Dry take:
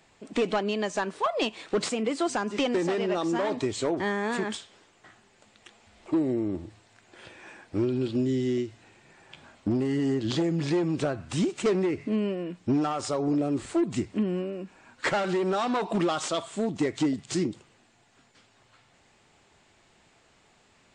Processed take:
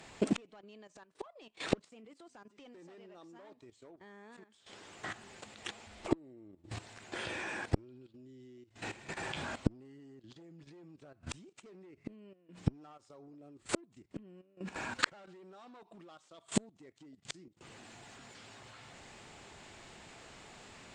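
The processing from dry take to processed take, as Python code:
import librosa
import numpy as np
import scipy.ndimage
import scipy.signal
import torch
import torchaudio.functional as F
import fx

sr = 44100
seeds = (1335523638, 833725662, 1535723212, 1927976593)

y = fx.gate_flip(x, sr, shuts_db=-27.0, range_db=-40)
y = fx.cheby_harmonics(y, sr, harmonics=(3, 5), levels_db=(-41, -39), full_scale_db=-23.0)
y = fx.level_steps(y, sr, step_db=14)
y = y * librosa.db_to_amplitude(16.0)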